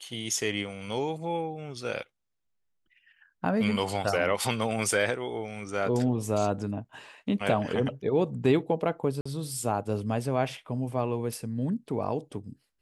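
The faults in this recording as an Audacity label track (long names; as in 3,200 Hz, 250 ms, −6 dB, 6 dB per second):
9.210000	9.260000	drop-out 45 ms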